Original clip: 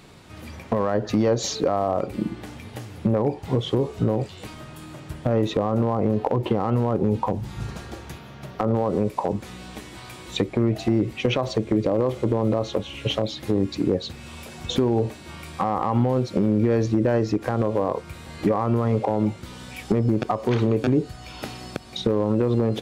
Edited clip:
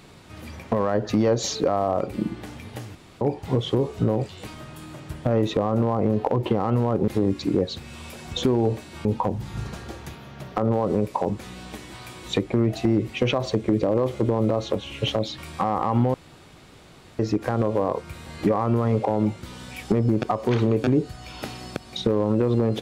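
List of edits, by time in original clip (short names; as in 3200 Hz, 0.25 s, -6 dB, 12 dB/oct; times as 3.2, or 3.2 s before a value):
2.95–3.21 room tone
13.41–15.38 move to 7.08
16.14–17.19 room tone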